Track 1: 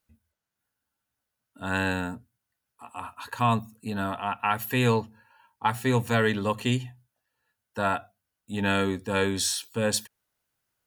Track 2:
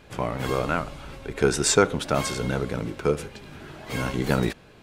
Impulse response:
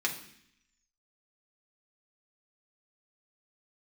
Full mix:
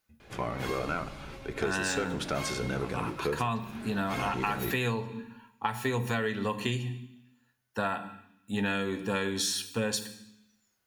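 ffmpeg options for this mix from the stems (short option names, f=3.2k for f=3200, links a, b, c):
-filter_complex "[0:a]volume=-2.5dB,asplit=2[a][b];[b]volume=-6dB[c];[1:a]asoftclip=type=tanh:threshold=-15dB,adelay=200,volume=-6dB,asplit=2[d][e];[e]volume=-10dB[f];[2:a]atrim=start_sample=2205[g];[c][f]amix=inputs=2:normalize=0[h];[h][g]afir=irnorm=-1:irlink=0[i];[a][d][i]amix=inputs=3:normalize=0,acompressor=threshold=-26dB:ratio=12"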